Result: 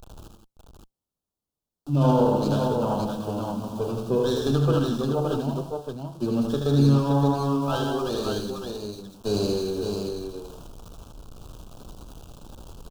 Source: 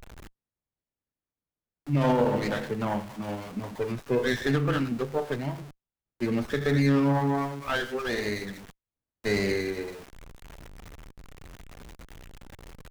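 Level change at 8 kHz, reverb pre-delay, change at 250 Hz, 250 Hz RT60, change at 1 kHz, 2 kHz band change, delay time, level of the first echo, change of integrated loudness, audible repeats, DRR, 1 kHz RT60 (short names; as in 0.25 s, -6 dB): +4.0 dB, none, +3.5 dB, none, +3.0 dB, -10.0 dB, 78 ms, -4.5 dB, +3.0 dB, 4, none, none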